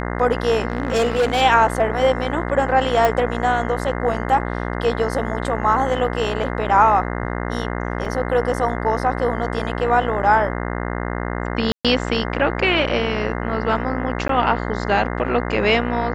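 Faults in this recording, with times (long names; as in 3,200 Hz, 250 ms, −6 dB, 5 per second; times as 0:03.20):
mains buzz 60 Hz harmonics 35 −25 dBFS
0:00.68–0:01.42: clipping −13.5 dBFS
0:03.05: click −5 dBFS
0:08.05: drop-out 3.8 ms
0:11.72–0:11.85: drop-out 126 ms
0:14.28–0:14.29: drop-out 13 ms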